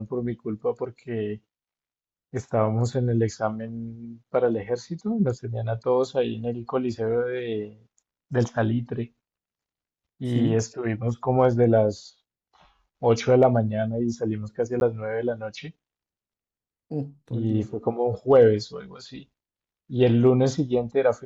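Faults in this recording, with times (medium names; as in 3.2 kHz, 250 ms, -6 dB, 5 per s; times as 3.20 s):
14.80–14.81 s: dropout 11 ms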